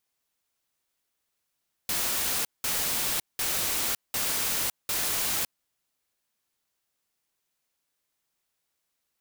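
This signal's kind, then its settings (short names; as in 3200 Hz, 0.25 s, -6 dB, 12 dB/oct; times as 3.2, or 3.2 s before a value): noise bursts white, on 0.56 s, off 0.19 s, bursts 5, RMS -28 dBFS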